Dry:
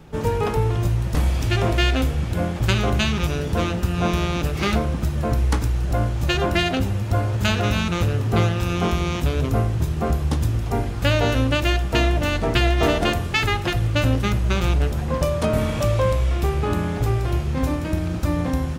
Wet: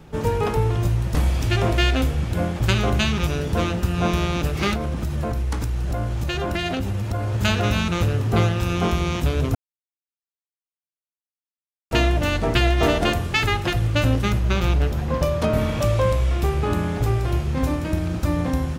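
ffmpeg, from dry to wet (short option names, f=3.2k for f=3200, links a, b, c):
-filter_complex "[0:a]asettb=1/sr,asplit=3[a][b][c];[a]atrim=end=4.734[d];[b]atrim=start=4.73:end=7.35,asetpts=PTS-STARTPTS,afade=t=in:d=0.004:c=qsin,afade=t=out:st=2.616:d=0.004:c=qsin,acompressor=threshold=-20dB:ratio=6:attack=3.2:release=140:knee=1:detection=peak[e];[c]atrim=start=7.346[f];[d][e]acrossfade=d=0.004:c1=hsin:c2=qsin[g];[g][f]acrossfade=d=0.004:c1=qsin:c2=hsin,asettb=1/sr,asplit=3[h][i][j];[h]atrim=end=14.394[k];[i]atrim=start=14.39:end=15.82,asetpts=PTS-STARTPTS,afade=t=in:d=0.004:c=qsin,afade=t=out:st=1.426:d=0.004:c=qsin,equalizer=f=8.8k:w=1.5:g=-5.5[l];[j]atrim=start=15.816[m];[k][l]acrossfade=d=0.004:c1=hsin:c2=qsin[n];[n][m]acrossfade=d=0.004:c1=qsin:c2=hsin,asplit=3[o][p][q];[o]atrim=end=9.55,asetpts=PTS-STARTPTS,afade=t=out:st=9.546:d=0.004:c=hsin[r];[p]atrim=start=9.55:end=11.91,asetpts=PTS-STARTPTS,volume=0[s];[q]atrim=start=11.91,asetpts=PTS-STARTPTS,afade=t=in:d=0.004:c=hsin[t];[r][s][t]concat=n=3:v=0:a=1"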